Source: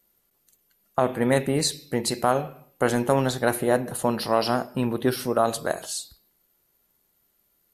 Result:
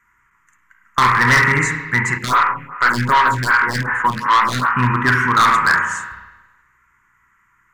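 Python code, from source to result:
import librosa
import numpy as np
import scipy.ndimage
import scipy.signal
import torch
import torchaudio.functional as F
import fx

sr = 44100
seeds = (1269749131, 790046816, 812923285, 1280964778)

y = 10.0 ** (-10.5 / 20.0) * (np.abs((x / 10.0 ** (-10.5 / 20.0) + 3.0) % 4.0 - 2.0) - 1.0)
y = fx.curve_eq(y, sr, hz=(130.0, 390.0, 680.0, 980.0, 2000.0, 4200.0, 7000.0, 10000.0), db=(0, -12, -26, 13, 15, -26, -2, -24))
y = fx.rev_spring(y, sr, rt60_s=1.1, pass_ms=(32, 49), chirp_ms=20, drr_db=1.5)
y = np.clip(y, -10.0 ** (-16.5 / 20.0), 10.0 ** (-16.5 / 20.0))
y = fx.stagger_phaser(y, sr, hz=2.6, at=(2.17, 4.75), fade=0.02)
y = F.gain(torch.from_numpy(y), 8.0).numpy()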